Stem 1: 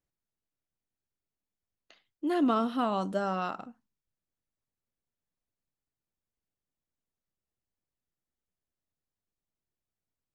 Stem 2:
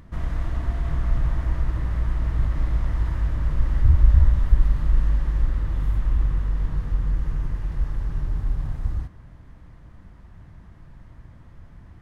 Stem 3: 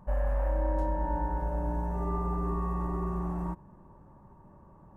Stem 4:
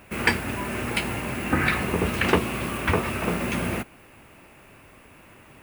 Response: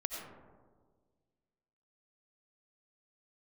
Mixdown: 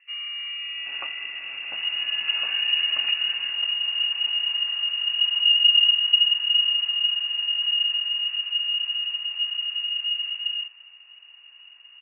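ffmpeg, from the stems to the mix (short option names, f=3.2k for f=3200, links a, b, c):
-filter_complex "[0:a]volume=-14dB[a];[1:a]adelay=1600,volume=-4.5dB[b];[2:a]volume=-5.5dB[c];[3:a]aemphasis=mode=reproduction:type=riaa,acompressor=threshold=-35dB:ratio=2,adelay=750,volume=-5dB,afade=t=out:st=3.15:d=0.59:silence=0.398107[d];[a][b][c][d]amix=inputs=4:normalize=0,bandreject=f=600:w=12,lowpass=f=2.5k:t=q:w=0.5098,lowpass=f=2.5k:t=q:w=0.6013,lowpass=f=2.5k:t=q:w=0.9,lowpass=f=2.5k:t=q:w=2.563,afreqshift=-2900"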